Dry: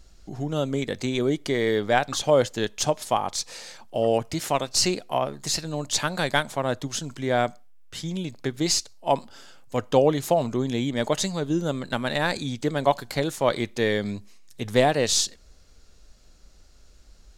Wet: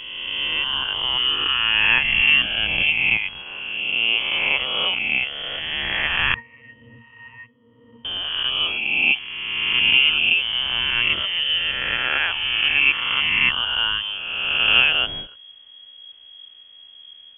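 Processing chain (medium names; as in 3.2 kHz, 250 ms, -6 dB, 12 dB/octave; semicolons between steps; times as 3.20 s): reverse spectral sustain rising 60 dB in 2.00 s; frequency inversion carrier 3.3 kHz; 6.34–8.05 s: pitch-class resonator A#, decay 0.17 s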